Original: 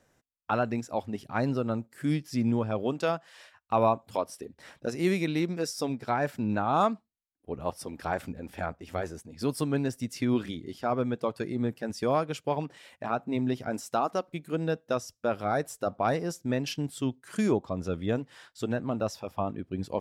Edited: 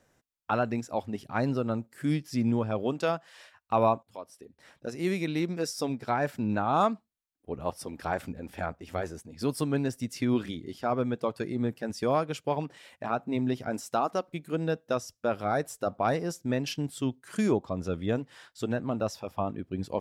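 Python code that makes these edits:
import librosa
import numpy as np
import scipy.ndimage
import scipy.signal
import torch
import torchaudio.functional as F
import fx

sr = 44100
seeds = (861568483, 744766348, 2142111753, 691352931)

y = fx.edit(x, sr, fx.fade_in_from(start_s=4.03, length_s=1.59, floor_db=-15.5), tone=tone)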